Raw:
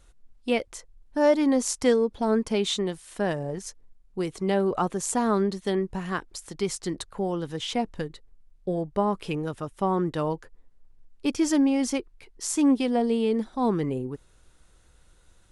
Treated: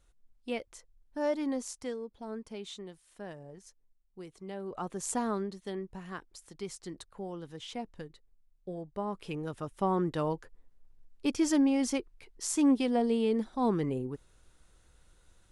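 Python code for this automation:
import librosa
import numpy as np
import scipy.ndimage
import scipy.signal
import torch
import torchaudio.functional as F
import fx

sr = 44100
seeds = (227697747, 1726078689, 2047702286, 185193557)

y = fx.gain(x, sr, db=fx.line((1.51, -10.5), (1.92, -17.0), (4.58, -17.0), (5.11, -5.5), (5.49, -12.0), (8.93, -12.0), (9.71, -4.0)))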